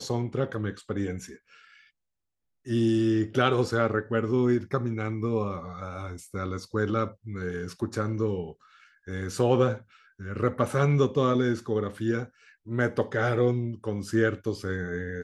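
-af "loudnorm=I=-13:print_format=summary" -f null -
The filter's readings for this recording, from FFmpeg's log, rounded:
Input Integrated:    -27.9 LUFS
Input True Peak:      -7.8 dBTP
Input LRA:             4.9 LU
Input Threshold:     -38.5 LUFS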